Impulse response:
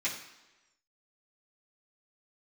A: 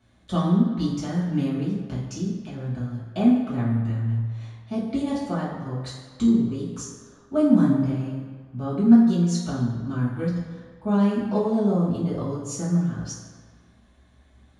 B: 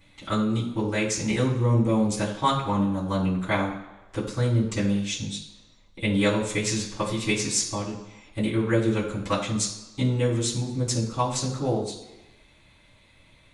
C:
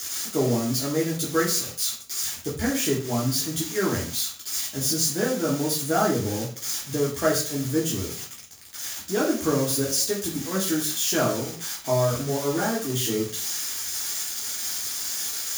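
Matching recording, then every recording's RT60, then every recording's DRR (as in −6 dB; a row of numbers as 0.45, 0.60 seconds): B; 1.7, 1.1, 0.45 seconds; −8.5, −9.5, −4.5 decibels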